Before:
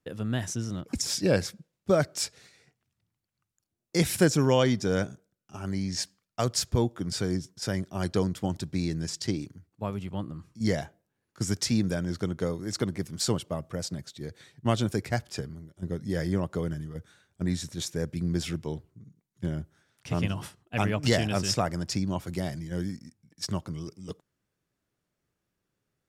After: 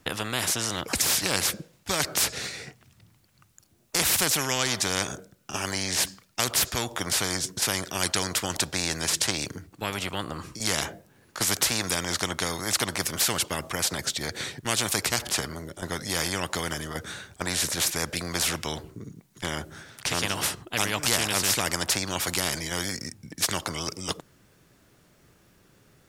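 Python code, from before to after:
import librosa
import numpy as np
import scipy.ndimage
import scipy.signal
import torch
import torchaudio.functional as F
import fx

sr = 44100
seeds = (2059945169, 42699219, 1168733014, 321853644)

y = fx.spectral_comp(x, sr, ratio=4.0)
y = y * 10.0 ** (5.5 / 20.0)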